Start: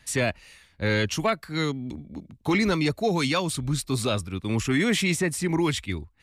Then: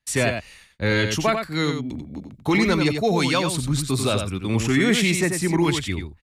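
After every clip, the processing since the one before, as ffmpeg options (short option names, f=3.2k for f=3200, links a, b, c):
-af "agate=range=-26dB:threshold=-53dB:ratio=16:detection=peak,aecho=1:1:91:0.473,volume=3dB"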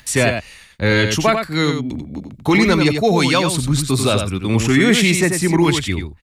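-af "acompressor=mode=upward:threshold=-35dB:ratio=2.5,volume=5.5dB"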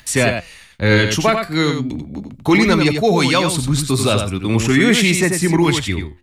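-af "flanger=delay=2.8:depth=8.9:regen=83:speed=0.4:shape=triangular,volume=5dB"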